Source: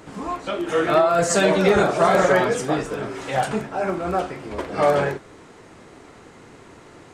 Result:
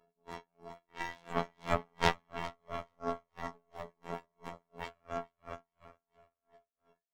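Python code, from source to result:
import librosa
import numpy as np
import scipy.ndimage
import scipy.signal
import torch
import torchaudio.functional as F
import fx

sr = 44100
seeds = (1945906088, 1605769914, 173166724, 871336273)

p1 = scipy.signal.sosfilt(scipy.signal.butter(8, 770.0, 'lowpass', fs=sr, output='sos'), x)
p2 = fx.low_shelf(p1, sr, hz=93.0, db=-9.0)
p3 = fx.leveller(p2, sr, passes=3)
p4 = fx.stiff_resonator(p3, sr, f0_hz=200.0, decay_s=0.75, stiffness=0.03)
p5 = fx.formant_shift(p4, sr, semitones=5)
p6 = fx.cheby_harmonics(p5, sr, harmonics=(6,), levels_db=(-8,), full_scale_db=-10.5)
p7 = fx.robotise(p6, sr, hz=85.3)
p8 = p7 + fx.echo_feedback(p7, sr, ms=423, feedback_pct=39, wet_db=-9.0, dry=0)
p9 = p8 * 10.0 ** (-40 * (0.5 - 0.5 * np.cos(2.0 * np.pi * 2.9 * np.arange(len(p8)) / sr)) / 20.0)
y = F.gain(torch.from_numpy(p9), -3.5).numpy()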